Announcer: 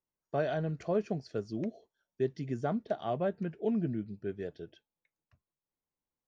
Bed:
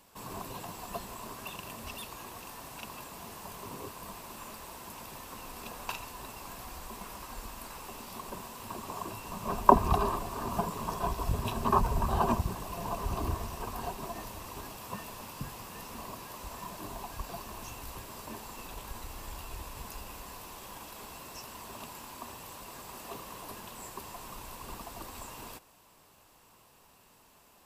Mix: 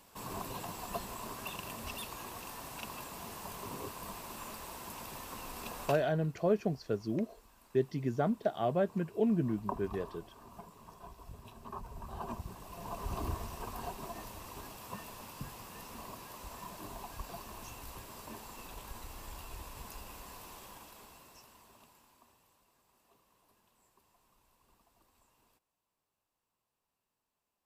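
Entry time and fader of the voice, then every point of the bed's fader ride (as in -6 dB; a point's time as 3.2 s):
5.55 s, +1.5 dB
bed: 5.86 s 0 dB
6.08 s -19 dB
11.77 s -19 dB
13.16 s -4 dB
20.55 s -4 dB
22.75 s -26.5 dB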